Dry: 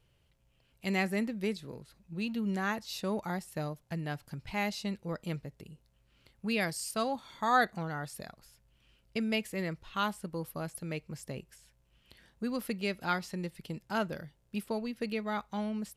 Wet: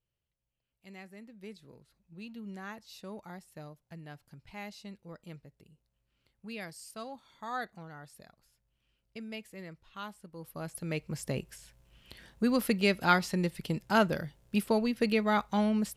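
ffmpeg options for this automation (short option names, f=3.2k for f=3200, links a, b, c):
-af "volume=7dB,afade=t=in:st=1.22:d=0.45:silence=0.398107,afade=t=in:st=10.34:d=0.25:silence=0.398107,afade=t=in:st=10.59:d=0.77:silence=0.334965"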